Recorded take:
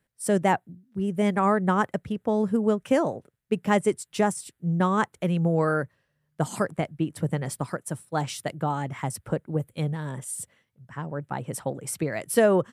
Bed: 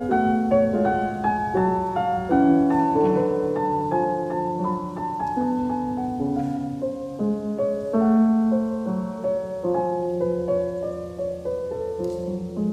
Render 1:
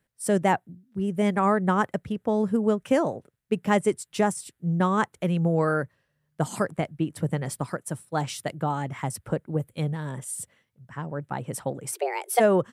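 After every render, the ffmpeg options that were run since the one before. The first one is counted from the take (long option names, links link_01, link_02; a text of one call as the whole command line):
ffmpeg -i in.wav -filter_complex "[0:a]asplit=3[link_01][link_02][link_03];[link_01]afade=type=out:start_time=11.91:duration=0.02[link_04];[link_02]afreqshift=250,afade=type=in:start_time=11.91:duration=0.02,afade=type=out:start_time=12.39:duration=0.02[link_05];[link_03]afade=type=in:start_time=12.39:duration=0.02[link_06];[link_04][link_05][link_06]amix=inputs=3:normalize=0" out.wav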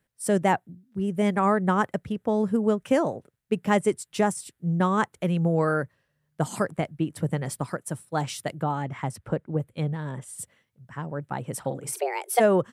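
ffmpeg -i in.wav -filter_complex "[0:a]asettb=1/sr,asplit=3[link_01][link_02][link_03];[link_01]atrim=end=8.634[link_04];[link_02]atrim=start=8.63:end=10.39,asetpts=PTS-STARTPTS,afade=type=in:duration=0.004:curve=qsin,afade=type=out:start_time=1.756:duration=0.004:curve=qsin,highshelf=frequency=6700:gain=-12[link_05];[link_03]atrim=start=10.386[link_06];[link_04][link_05]acrossfade=duration=0.004:curve1=hsin:curve2=qsin[link_07];[link_07][link_06]acrossfade=duration=0.004:curve1=qsin:curve2=hsin,asettb=1/sr,asplit=3[link_08][link_09][link_10];[link_08]atrim=end=11.604[link_11];[link_09]atrim=start=11.6:end=12.03,asetpts=PTS-STARTPTS,afade=type=in:duration=0.004:curve=qsin,afade=type=out:start_time=0.426:duration=0.004:curve=qsin,asplit=2[link_12][link_13];[link_13]adelay=43,volume=-9dB[link_14];[link_12][link_14]amix=inputs=2:normalize=0,atrim=end_sample=18963[link_15];[link_10]atrim=start=12.026[link_16];[link_11][link_15]acrossfade=duration=0.004:curve1=hsin:curve2=qsin[link_17];[link_17][link_16]acrossfade=duration=0.004:curve1=qsin:curve2=hsin" out.wav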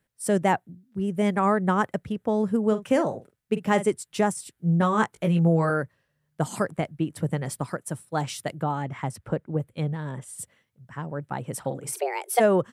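ffmpeg -i in.wav -filter_complex "[0:a]asettb=1/sr,asplit=3[link_01][link_02][link_03];[link_01]atrim=end=2.674[link_04];[link_02]atrim=start=2.67:end=3.88,asetpts=PTS-STARTPTS,afade=type=in:duration=0.004:curve=qsin,afade=type=out:start_time=1.206:duration=0.004:curve=qsin,asplit=2[link_05][link_06];[link_06]adelay=46,volume=-12dB[link_07];[link_05][link_07]amix=inputs=2:normalize=0,atrim=end_sample=53361[link_08];[link_03]atrim=start=3.876[link_09];[link_04][link_08]acrossfade=duration=0.004:curve1=hsin:curve2=qsin[link_10];[link_10][link_09]acrossfade=duration=0.004:curve1=qsin:curve2=hsin,asettb=1/sr,asplit=3[link_11][link_12][link_13];[link_11]atrim=end=4.554[link_14];[link_12]atrim=start=4.55:end=5.7,asetpts=PTS-STARTPTS,afade=type=in:duration=0.004:curve=qsin,afade=type=out:start_time=1.146:duration=0.004:curve=qsin,asplit=2[link_15][link_16];[link_16]adelay=18,volume=-5dB[link_17];[link_15][link_17]amix=inputs=2:normalize=0,atrim=end_sample=50715[link_18];[link_13]atrim=start=5.696[link_19];[link_14][link_18]acrossfade=duration=0.004:curve1=hsin:curve2=qsin[link_20];[link_20][link_19]acrossfade=duration=0.004:curve1=qsin:curve2=hsin" out.wav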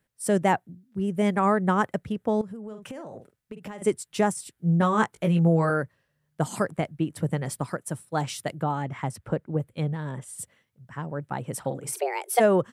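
ffmpeg -i in.wav -filter_complex "[0:a]asettb=1/sr,asplit=3[link_01][link_02][link_03];[link_01]atrim=end=2.414[link_04];[link_02]atrim=start=2.41:end=3.82,asetpts=PTS-STARTPTS,afade=type=in:duration=0.004:curve=qsin,afade=type=out:start_time=1.406:duration=0.004:curve=qsin,acompressor=threshold=-34dB:ratio=20:attack=3.2:release=140:knee=1:detection=peak[link_05];[link_03]atrim=start=3.816[link_06];[link_04][link_05]acrossfade=duration=0.004:curve1=hsin:curve2=qsin[link_07];[link_07][link_06]acrossfade=duration=0.004:curve1=qsin:curve2=hsin" out.wav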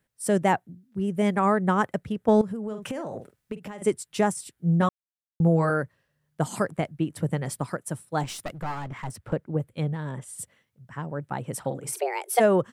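ffmpeg -i in.wav -filter_complex "[0:a]asettb=1/sr,asplit=3[link_01][link_02][link_03];[link_01]atrim=end=2.284[link_04];[link_02]atrim=start=2.28:end=3.57,asetpts=PTS-STARTPTS,afade=type=in:duration=0.004:curve=qsin,afade=type=out:start_time=1.286:duration=0.004:curve=qsin,acontrast=49[link_05];[link_03]atrim=start=3.566[link_06];[link_04][link_05]acrossfade=duration=0.004:curve1=hsin:curve2=qsin[link_07];[link_07][link_06]acrossfade=duration=0.004:curve1=qsin:curve2=hsin,asettb=1/sr,asplit=3[link_08][link_09][link_10];[link_08]atrim=end=8.234[link_11];[link_09]atrim=start=8.23:end=9.33,asetpts=PTS-STARTPTS,afade=type=in:duration=0.004:curve=qsin,afade=type=out:start_time=1.096:duration=0.004:curve=qsin,aeval=exprs='clip(val(0),-1,0.015)':channel_layout=same[link_12];[link_10]atrim=start=9.326[link_13];[link_11][link_12]acrossfade=duration=0.004:curve1=hsin:curve2=qsin[link_14];[link_14][link_13]acrossfade=duration=0.004:curve1=qsin:curve2=hsin,asplit=3[link_15][link_16][link_17];[link_15]atrim=end=4.89,asetpts=PTS-STARTPTS,afade=type=out:start_time=4.886:duration=0.004:curve=hsin[link_18];[link_16]atrim=start=4.89:end=5.4,asetpts=PTS-STARTPTS,volume=0[link_19];[link_17]atrim=start=5.4,asetpts=PTS-STARTPTS,afade=type=in:duration=0.004:curve=hsin[link_20];[link_18][link_19][link_20]concat=n=3:v=0:a=1" out.wav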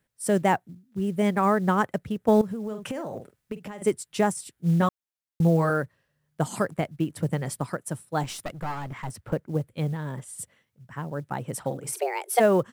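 ffmpeg -i in.wav -af "acrusher=bits=8:mode=log:mix=0:aa=0.000001" out.wav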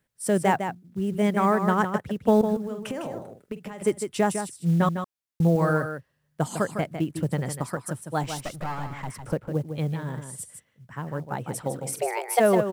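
ffmpeg -i in.wav -af "aecho=1:1:154:0.398" out.wav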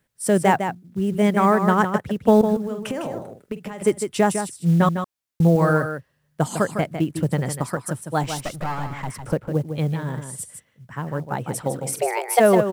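ffmpeg -i in.wav -af "volume=4.5dB" out.wav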